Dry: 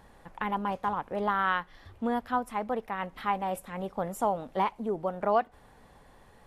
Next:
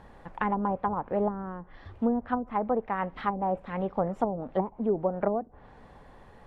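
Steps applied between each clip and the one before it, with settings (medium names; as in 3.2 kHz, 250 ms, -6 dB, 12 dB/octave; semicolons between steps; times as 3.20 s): low-pass that closes with the level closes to 370 Hz, closed at -24 dBFS; low-pass 2.1 kHz 6 dB/octave; trim +5 dB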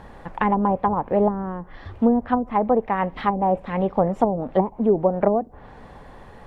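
dynamic bell 1.4 kHz, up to -6 dB, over -50 dBFS, Q 3; trim +8.5 dB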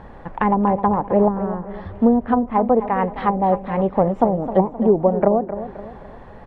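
low-pass 1.8 kHz 6 dB/octave; on a send: feedback delay 261 ms, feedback 42%, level -12 dB; on the sum: trim +3 dB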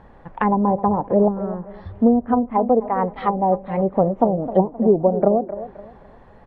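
low-pass that closes with the level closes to 1.3 kHz, closed at -14 dBFS; spectral noise reduction 7 dB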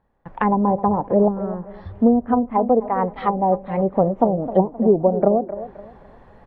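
gate with hold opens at -37 dBFS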